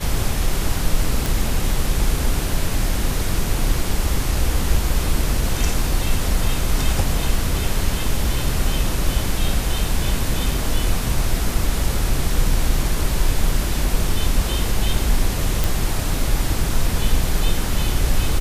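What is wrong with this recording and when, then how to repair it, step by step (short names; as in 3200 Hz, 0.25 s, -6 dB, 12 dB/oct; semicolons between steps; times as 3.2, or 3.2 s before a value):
1.26 pop
15.64 pop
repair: de-click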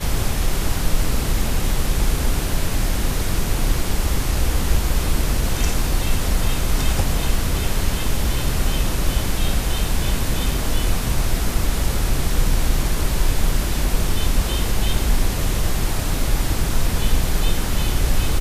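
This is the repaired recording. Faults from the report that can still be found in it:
none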